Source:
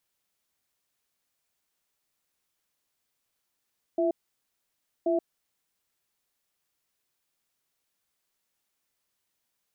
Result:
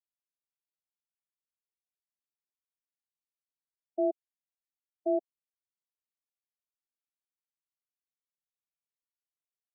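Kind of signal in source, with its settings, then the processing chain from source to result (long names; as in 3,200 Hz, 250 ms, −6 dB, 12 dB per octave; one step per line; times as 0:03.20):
tone pair in a cadence 342 Hz, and 661 Hz, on 0.13 s, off 0.95 s, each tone −25 dBFS 1.81 s
high-pass filter 270 Hz
every bin expanded away from the loudest bin 1.5 to 1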